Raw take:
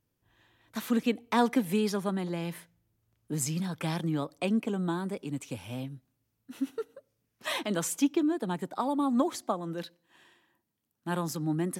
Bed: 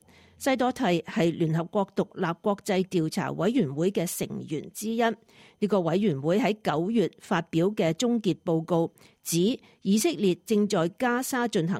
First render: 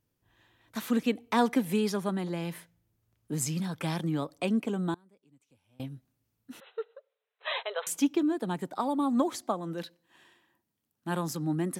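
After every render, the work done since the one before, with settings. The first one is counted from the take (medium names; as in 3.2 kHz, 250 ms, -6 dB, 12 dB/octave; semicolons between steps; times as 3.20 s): 4.94–5.80 s: inverted gate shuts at -38 dBFS, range -28 dB; 6.60–7.87 s: brick-wall FIR band-pass 400–4100 Hz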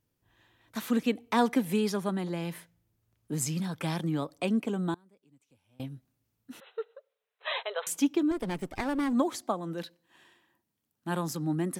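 8.31–9.13 s: comb filter that takes the minimum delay 0.36 ms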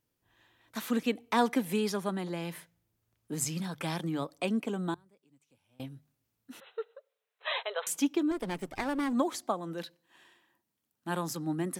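bass shelf 280 Hz -5 dB; hum notches 50/100/150 Hz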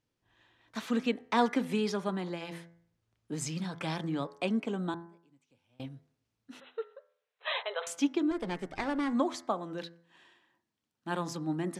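low-pass 6.1 kHz 12 dB/octave; de-hum 84.53 Hz, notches 26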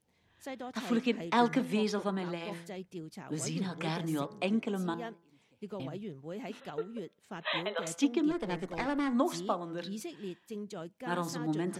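add bed -17.5 dB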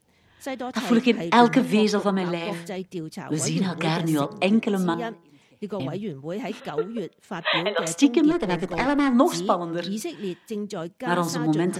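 trim +10.5 dB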